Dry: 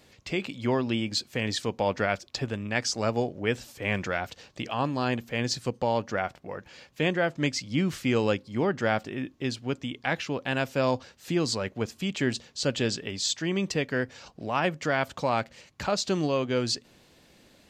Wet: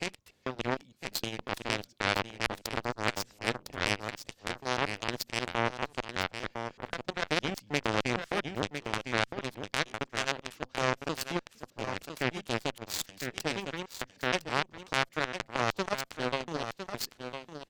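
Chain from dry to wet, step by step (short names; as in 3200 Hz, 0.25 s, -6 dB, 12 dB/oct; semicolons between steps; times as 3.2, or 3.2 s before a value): slices in reverse order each 0.154 s, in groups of 3; in parallel at -0.5 dB: compressor, threshold -34 dBFS, peak gain reduction 13 dB; on the sum: requantised 12-bit, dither none; added harmonics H 3 -17 dB, 4 -13 dB, 6 -20 dB, 7 -20 dB, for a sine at -8.5 dBFS; on a send: echo 1.006 s -10 dB; on the sum: core saturation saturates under 1700 Hz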